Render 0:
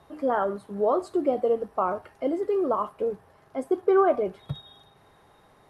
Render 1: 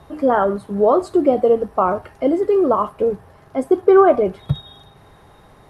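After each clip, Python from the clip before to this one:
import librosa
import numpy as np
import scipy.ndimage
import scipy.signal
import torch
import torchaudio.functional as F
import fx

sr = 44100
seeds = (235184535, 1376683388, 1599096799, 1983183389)

y = fx.low_shelf(x, sr, hz=160.0, db=9.0)
y = F.gain(torch.from_numpy(y), 8.0).numpy()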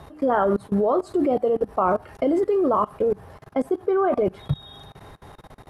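y = fx.level_steps(x, sr, step_db=24)
y = F.gain(torch.from_numpy(y), 4.5).numpy()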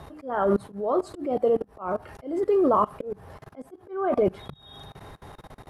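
y = fx.auto_swell(x, sr, attack_ms=302.0)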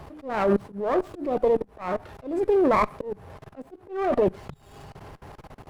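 y = fx.running_max(x, sr, window=9)
y = F.gain(torch.from_numpy(y), 1.0).numpy()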